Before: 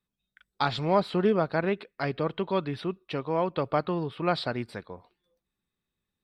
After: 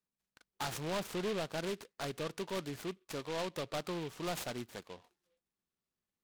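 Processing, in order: bass shelf 130 Hz -9 dB; saturation -25.5 dBFS, distortion -8 dB; delay time shaken by noise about 2.5 kHz, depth 0.094 ms; trim -6 dB

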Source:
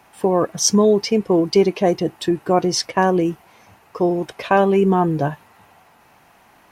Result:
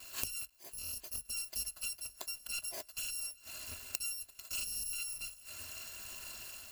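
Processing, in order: bit-reversed sample order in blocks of 256 samples; waveshaping leveller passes 1; bit crusher 9-bit; level rider gain up to 5 dB; gate with hold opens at -46 dBFS; 2.08–2.90 s: peaking EQ 640 Hz +4.5 dB 2.9 oct; inverted gate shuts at -18 dBFS, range -30 dB; rippled EQ curve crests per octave 1.4, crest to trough 7 dB; 0.50–1.06 s: fade in; shuffle delay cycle 836 ms, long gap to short 1.5:1, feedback 45%, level -22 dB; loudspeaker Doppler distortion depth 0.2 ms; trim +2.5 dB

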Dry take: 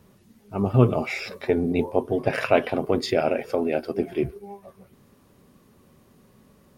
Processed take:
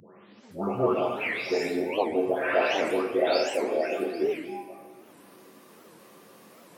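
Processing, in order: delay that grows with frequency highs late, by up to 524 ms; high-pass 410 Hz 12 dB/octave; in parallel at -0.5 dB: peak limiter -20.5 dBFS, peak gain reduction 11 dB; on the sum: reverberation RT60 1.2 s, pre-delay 10 ms, DRR 0.5 dB; upward compressor, threshold -37 dBFS; warped record 78 rpm, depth 250 cents; trim -5.5 dB

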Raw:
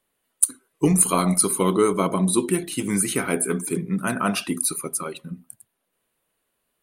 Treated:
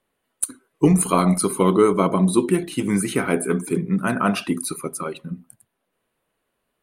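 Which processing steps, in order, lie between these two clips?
treble shelf 3.8 kHz -10.5 dB; trim +3.5 dB

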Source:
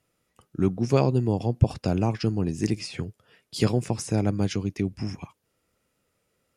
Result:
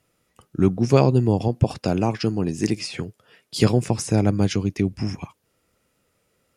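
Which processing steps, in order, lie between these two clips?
1.48–3.56 s: bass shelf 100 Hz -11.5 dB; trim +5 dB

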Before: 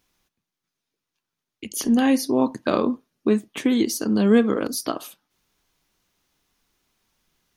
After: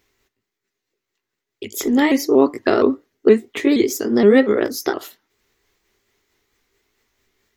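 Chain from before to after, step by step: sawtooth pitch modulation +3 st, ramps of 235 ms; graphic EQ with 31 bands 100 Hz +6 dB, 160 Hz -11 dB, 400 Hz +11 dB, 2 kHz +9 dB, 10 kHz -8 dB; trim +3.5 dB

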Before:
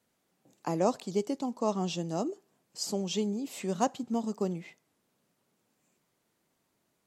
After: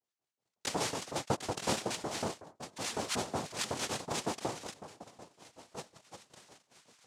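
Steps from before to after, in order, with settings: median filter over 15 samples; peaking EQ 420 Hz -11.5 dB 1.3 oct; de-hum 159.7 Hz, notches 10; waveshaping leveller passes 2; compression, threshold -35 dBFS, peak gain reduction 11 dB; waveshaping leveller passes 3; repeats whose band climbs or falls 651 ms, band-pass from 270 Hz, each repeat 0.7 oct, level -11 dB; LFO band-pass saw up 5.4 Hz 430–5500 Hz; noise-vocoded speech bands 2; trim +8.5 dB

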